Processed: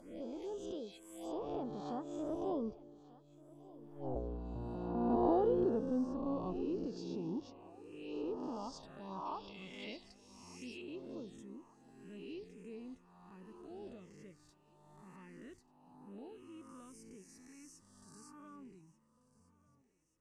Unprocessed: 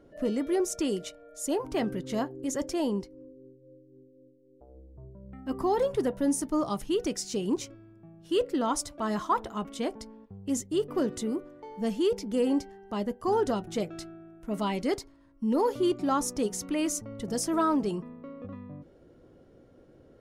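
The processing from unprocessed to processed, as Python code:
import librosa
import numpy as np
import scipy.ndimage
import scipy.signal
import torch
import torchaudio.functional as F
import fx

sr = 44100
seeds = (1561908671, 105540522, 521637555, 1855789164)

p1 = fx.spec_swells(x, sr, rise_s=1.35)
p2 = fx.doppler_pass(p1, sr, speed_mps=35, closest_m=2.9, pass_at_s=4.09)
p3 = fx.env_phaser(p2, sr, low_hz=340.0, high_hz=2100.0, full_db=-56.0)
p4 = fx.env_lowpass_down(p3, sr, base_hz=1700.0, full_db=-52.0)
p5 = p4 + fx.echo_thinned(p4, sr, ms=1188, feedback_pct=56, hz=270.0, wet_db=-20.0, dry=0)
p6 = fx.spec_box(p5, sr, start_s=9.26, length_s=1.55, low_hz=2000.0, high_hz=5700.0, gain_db=12)
y = p6 * 10.0 ** (16.5 / 20.0)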